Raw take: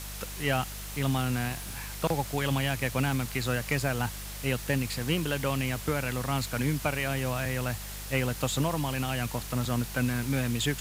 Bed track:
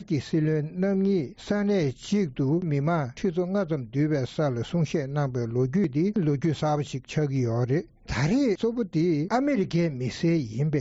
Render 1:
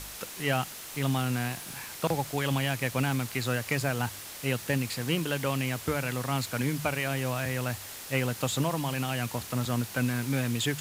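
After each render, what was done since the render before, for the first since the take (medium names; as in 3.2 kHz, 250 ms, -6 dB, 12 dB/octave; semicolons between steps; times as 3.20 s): de-hum 50 Hz, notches 4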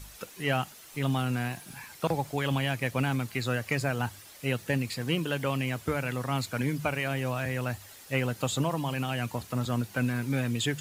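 noise reduction 10 dB, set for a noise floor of -42 dBFS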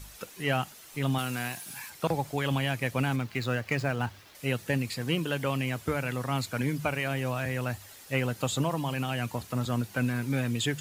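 1.18–1.90 s: tilt EQ +2 dB/octave; 3.16–4.35 s: median filter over 5 samples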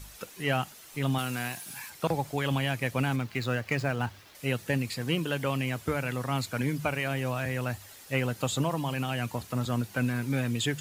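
no audible change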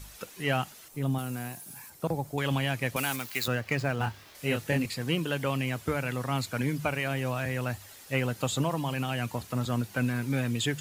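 0.88–2.38 s: peaking EQ 2.7 kHz -11 dB 2.8 oct; 2.96–3.48 s: RIAA curve recording; 3.98–4.86 s: doubling 27 ms -4 dB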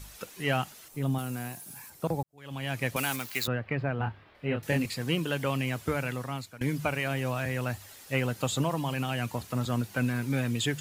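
2.23–2.79 s: fade in quadratic; 3.47–4.63 s: distance through air 440 m; 6.03–6.61 s: fade out, to -20 dB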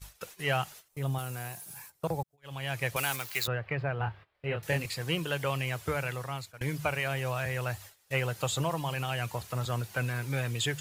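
gate -46 dBFS, range -18 dB; peaking EQ 250 Hz -14.5 dB 0.55 oct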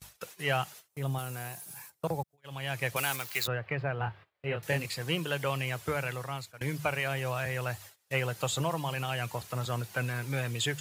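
gate -55 dBFS, range -7 dB; high-pass 100 Hz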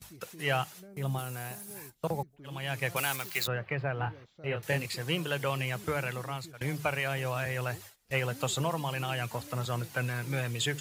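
add bed track -26.5 dB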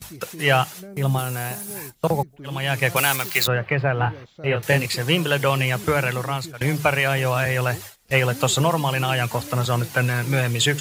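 trim +11.5 dB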